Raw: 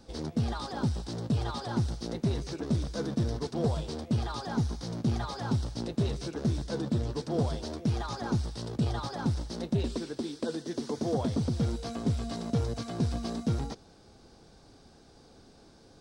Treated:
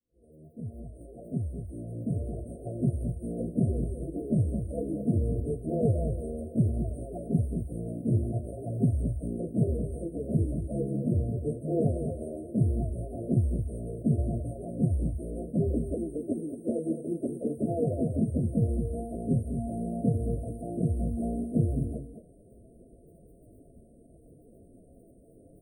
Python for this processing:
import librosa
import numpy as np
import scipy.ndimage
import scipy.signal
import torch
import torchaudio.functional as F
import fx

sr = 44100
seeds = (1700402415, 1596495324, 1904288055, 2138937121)

p1 = fx.fade_in_head(x, sr, length_s=2.19)
p2 = fx.rider(p1, sr, range_db=3, speed_s=0.5)
p3 = p1 + (p2 * librosa.db_to_amplitude(-3.0))
p4 = fx.dmg_crackle(p3, sr, seeds[0], per_s=13.0, level_db=-42.0)
p5 = fx.stretch_vocoder_free(p4, sr, factor=1.6)
p6 = fx.brickwall_bandstop(p5, sr, low_hz=710.0, high_hz=8400.0)
y = p6 + fx.echo_single(p6, sr, ms=219, db=-9.5, dry=0)